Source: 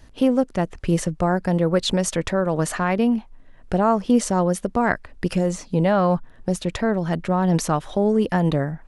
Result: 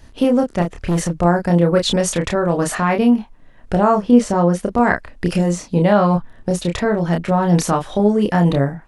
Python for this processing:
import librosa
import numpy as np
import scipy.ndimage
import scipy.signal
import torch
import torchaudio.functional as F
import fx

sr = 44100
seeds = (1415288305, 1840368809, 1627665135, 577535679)

y = fx.high_shelf(x, sr, hz=fx.line((3.99, 3900.0), (4.59, 6200.0)), db=-11.0, at=(3.99, 4.59), fade=0.02)
y = fx.doubler(y, sr, ms=29.0, db=-4.0)
y = fx.overload_stage(y, sr, gain_db=17.0, at=(0.62, 1.19))
y = F.gain(torch.from_numpy(y), 3.0).numpy()